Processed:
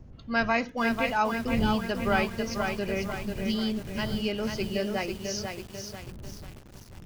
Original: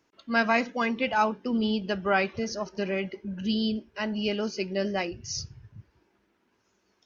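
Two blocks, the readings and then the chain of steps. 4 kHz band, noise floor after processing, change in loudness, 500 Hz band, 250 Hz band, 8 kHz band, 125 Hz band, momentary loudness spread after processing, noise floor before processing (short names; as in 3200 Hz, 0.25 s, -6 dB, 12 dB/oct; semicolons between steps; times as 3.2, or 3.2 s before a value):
-0.5 dB, -48 dBFS, -0.5 dB, -0.5 dB, -0.5 dB, n/a, +4.0 dB, 16 LU, -71 dBFS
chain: wind noise 140 Hz -39 dBFS; lo-fi delay 0.493 s, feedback 55%, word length 7-bit, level -4.5 dB; gain -2 dB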